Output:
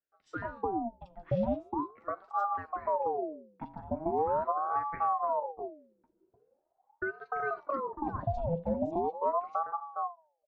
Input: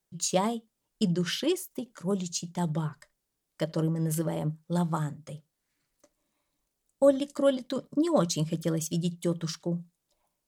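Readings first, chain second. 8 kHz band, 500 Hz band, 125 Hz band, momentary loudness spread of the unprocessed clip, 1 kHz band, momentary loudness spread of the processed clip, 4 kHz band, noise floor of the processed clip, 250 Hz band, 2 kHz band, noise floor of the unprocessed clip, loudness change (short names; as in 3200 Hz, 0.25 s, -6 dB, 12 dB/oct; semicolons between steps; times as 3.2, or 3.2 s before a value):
under -40 dB, -4.0 dB, -10.5 dB, 10 LU, +7.5 dB, 10 LU, under -30 dB, -78 dBFS, -9.5 dB, +2.5 dB, -82 dBFS, -4.0 dB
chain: ending faded out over 1.49 s; tilt -4 dB/oct; de-hum 155.8 Hz, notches 22; compressor, threshold -19 dBFS, peak gain reduction 8.5 dB; tape spacing loss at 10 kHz 38 dB; three bands offset in time mids, highs, lows 40/300 ms, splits 440/2800 Hz; ring modulator with a swept carrier 670 Hz, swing 50%, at 0.41 Hz; gain -3 dB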